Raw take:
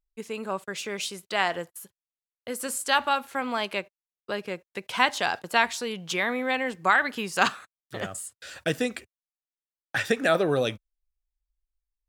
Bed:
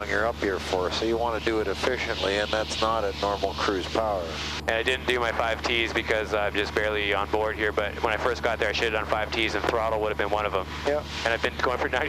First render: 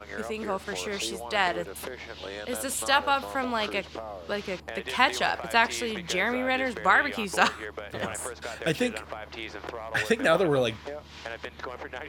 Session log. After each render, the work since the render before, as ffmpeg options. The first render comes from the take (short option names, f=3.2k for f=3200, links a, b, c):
-filter_complex "[1:a]volume=-12.5dB[a];[0:a][a]amix=inputs=2:normalize=0"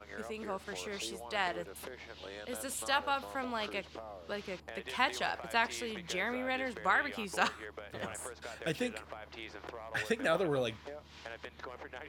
-af "volume=-8.5dB"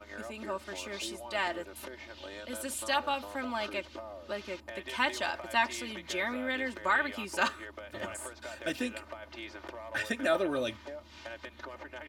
-af "aecho=1:1:3.3:0.77"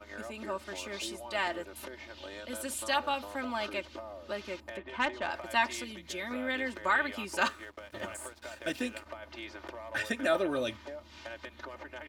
-filter_complex "[0:a]asettb=1/sr,asplit=3[a][b][c];[a]atrim=end=4.774[d];[b]atrim=start=4.77:end=5.31,asetpts=PTS-STARTPTS,afade=t=in:d=0.004:c=qsin,afade=t=out:st=0.536:d=0.004:c=qsin,adynamicsmooth=sensitivity=1:basefreq=1.9k[e];[c]atrim=start=5.306[f];[d][e]acrossfade=d=0.004:c1=hsin:c2=qsin[g];[g][f]acrossfade=d=0.004:c1=qsin:c2=hsin,asettb=1/sr,asplit=3[h][i][j];[h]atrim=end=5.844[k];[i]atrim=start=5.84:end=6.31,asetpts=PTS-STARTPTS,afade=t=in:d=0.004:c=qsin,afade=t=out:st=0.466:d=0.004:c=qsin,equalizer=f=1.1k:t=o:w=2.9:g=-8.5[l];[j]atrim=start=6.306[m];[k][l]acrossfade=d=0.004:c1=hsin:c2=qsin[n];[n][m]acrossfade=d=0.004:c1=qsin:c2=hsin,asettb=1/sr,asplit=3[o][p][q];[o]atrim=end=7.474[r];[p]atrim=start=7.47:end=9.06,asetpts=PTS-STARTPTS,afade=t=in:d=0.004:c=qsin,afade=t=out:st=1.586:d=0.004:c=qsin,aeval=exprs='sgn(val(0))*max(abs(val(0))-0.00168,0)':c=same[s];[q]atrim=start=9.056[t];[r][s]acrossfade=d=0.004:c1=hsin:c2=qsin[u];[u][t]acrossfade=d=0.004:c1=qsin:c2=hsin"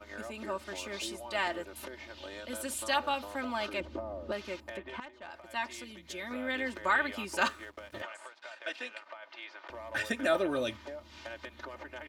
-filter_complex "[0:a]asettb=1/sr,asplit=3[a][b][c];[a]atrim=end=3.804[d];[b]atrim=start=3.8:end=4.32,asetpts=PTS-STARTPTS,afade=t=in:d=0.004:c=qsin,afade=t=out:st=0.516:d=0.004:c=qsin,tiltshelf=f=1.1k:g=9[e];[c]atrim=start=4.316[f];[d][e]acrossfade=d=0.004:c1=hsin:c2=qsin[g];[g][f]acrossfade=d=0.004:c1=qsin:c2=hsin,asettb=1/sr,asplit=3[h][i][j];[h]atrim=end=8.024[k];[i]atrim=start=8.02:end=9.7,asetpts=PTS-STARTPTS,afade=t=in:d=0.004:c=qsin,afade=t=out:st=1.676:d=0.004:c=qsin,highpass=720,lowpass=4.2k[l];[j]atrim=start=9.696[m];[k][l]acrossfade=d=0.004:c1=hsin:c2=qsin[n];[n][m]acrossfade=d=0.004:c1=qsin:c2=hsin,asplit=2[o][p];[o]atrim=end=5,asetpts=PTS-STARTPTS,afade=t=out:st=4.996:d=0.004:c=hsin:silence=0.112202[q];[p]atrim=start=5,asetpts=PTS-STARTPTS,afade=t=in:d=1.71:silence=0.112202[r];[q][r]concat=n=2:v=0:a=1"